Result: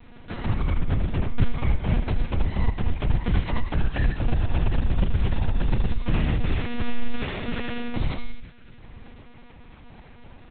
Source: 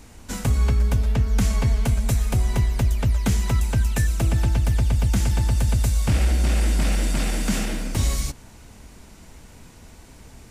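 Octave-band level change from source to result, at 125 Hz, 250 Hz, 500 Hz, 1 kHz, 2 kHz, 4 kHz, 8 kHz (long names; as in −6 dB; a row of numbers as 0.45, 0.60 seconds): −5.0 dB, −1.5 dB, −1.5 dB, −1.0 dB, −2.0 dB, −5.5 dB, below −40 dB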